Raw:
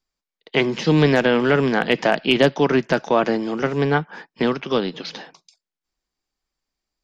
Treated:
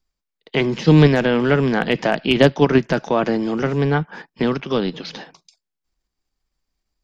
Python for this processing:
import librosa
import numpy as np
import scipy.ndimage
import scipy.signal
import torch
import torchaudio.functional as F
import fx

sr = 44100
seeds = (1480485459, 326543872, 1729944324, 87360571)

p1 = fx.low_shelf(x, sr, hz=160.0, db=10.0)
p2 = fx.level_steps(p1, sr, step_db=13)
p3 = p1 + (p2 * 10.0 ** (2.0 / 20.0))
y = p3 * 10.0 ** (-4.5 / 20.0)